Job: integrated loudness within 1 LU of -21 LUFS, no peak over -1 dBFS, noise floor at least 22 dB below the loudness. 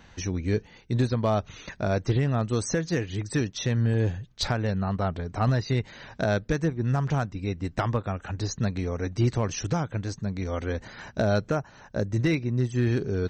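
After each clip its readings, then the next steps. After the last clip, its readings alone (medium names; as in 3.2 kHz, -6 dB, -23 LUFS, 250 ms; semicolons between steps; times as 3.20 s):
clipped samples 0.4%; clipping level -16.0 dBFS; loudness -28.0 LUFS; peak level -16.0 dBFS; loudness target -21.0 LUFS
-> clip repair -16 dBFS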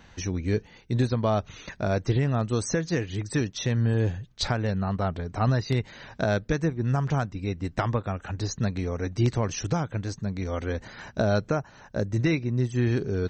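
clipped samples 0.0%; loudness -27.5 LUFS; peak level -9.5 dBFS; loudness target -21.0 LUFS
-> trim +6.5 dB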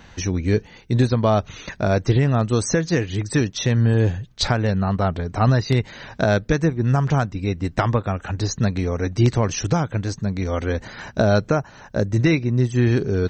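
loudness -21.0 LUFS; peak level -3.0 dBFS; noise floor -46 dBFS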